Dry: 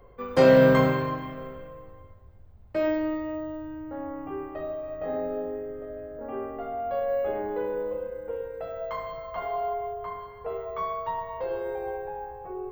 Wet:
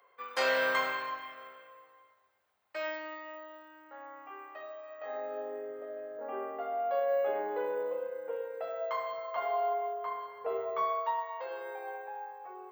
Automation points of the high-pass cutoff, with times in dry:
4.94 s 1.2 kHz
5.66 s 520 Hz
10.36 s 520 Hz
10.61 s 240 Hz
11.30 s 910 Hz

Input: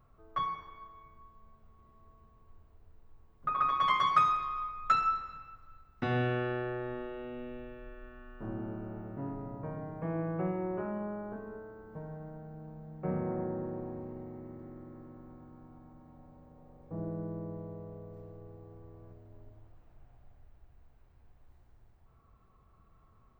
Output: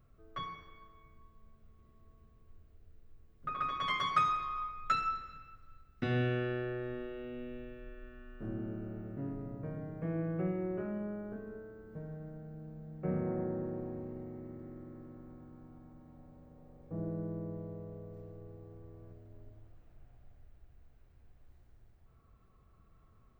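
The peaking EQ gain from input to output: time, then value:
peaking EQ 930 Hz 0.73 oct
3.78 s -14 dB
4.62 s -3.5 dB
4.96 s -14 dB
12.69 s -14 dB
13.30 s -7 dB

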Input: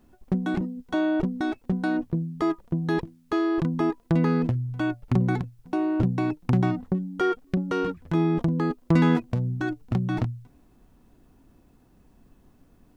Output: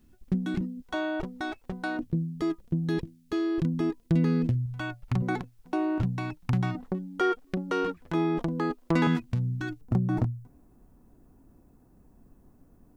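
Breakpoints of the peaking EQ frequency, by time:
peaking EQ -12.5 dB 1.9 oct
740 Hz
from 0.82 s 210 Hz
from 1.99 s 940 Hz
from 4.66 s 340 Hz
from 5.22 s 100 Hz
from 5.98 s 380 Hz
from 6.75 s 100 Hz
from 9.07 s 560 Hz
from 9.81 s 3.2 kHz

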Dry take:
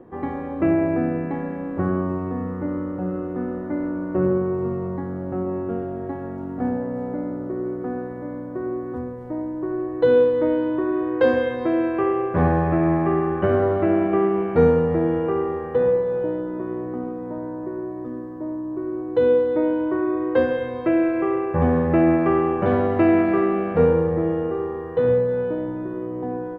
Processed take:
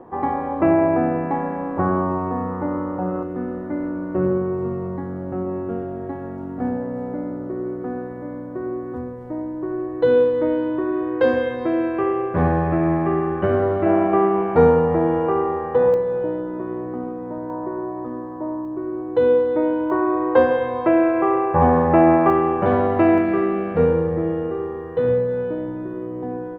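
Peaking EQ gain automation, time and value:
peaking EQ 890 Hz 1.1 oct
+12 dB
from 3.23 s +0.5 dB
from 13.86 s +9 dB
from 15.94 s +3 dB
from 17.50 s +11 dB
from 18.65 s +4 dB
from 19.90 s +12 dB
from 22.30 s +5.5 dB
from 23.18 s -1.5 dB

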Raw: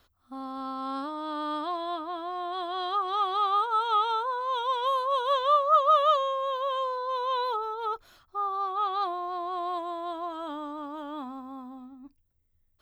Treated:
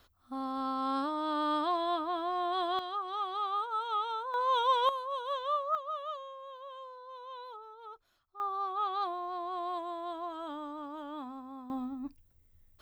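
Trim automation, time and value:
+1 dB
from 2.79 s -8 dB
from 4.34 s +1 dB
from 4.89 s -9.5 dB
from 5.75 s -17 dB
from 8.40 s -4.5 dB
from 11.70 s +8 dB

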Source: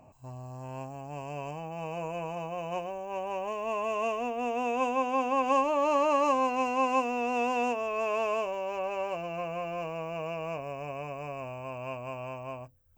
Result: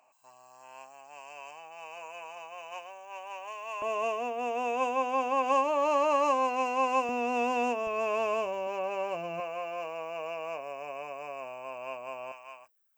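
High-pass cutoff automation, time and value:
1.1 kHz
from 3.82 s 330 Hz
from 7.09 s 130 Hz
from 7.87 s 43 Hz
from 8.67 s 170 Hz
from 9.40 s 460 Hz
from 12.32 s 1.2 kHz

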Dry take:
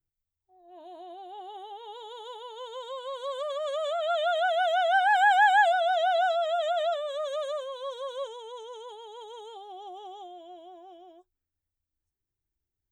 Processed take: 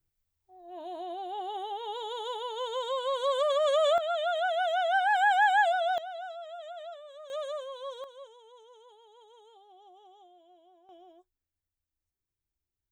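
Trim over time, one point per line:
+6 dB
from 3.98 s -3 dB
from 5.98 s -15 dB
from 7.30 s -3.5 dB
from 8.04 s -13 dB
from 10.89 s -3.5 dB

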